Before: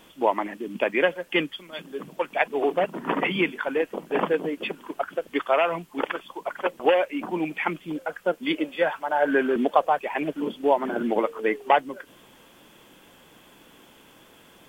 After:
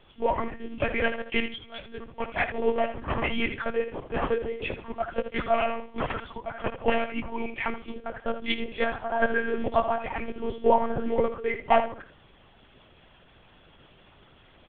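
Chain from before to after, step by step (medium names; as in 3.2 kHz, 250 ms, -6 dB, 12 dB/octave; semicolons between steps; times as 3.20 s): chorus voices 6, 0.77 Hz, delay 12 ms, depth 3.6 ms; feedback delay 73 ms, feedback 23%, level -10 dB; monotone LPC vocoder at 8 kHz 230 Hz; 4.15–6.38 s: three bands compressed up and down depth 40%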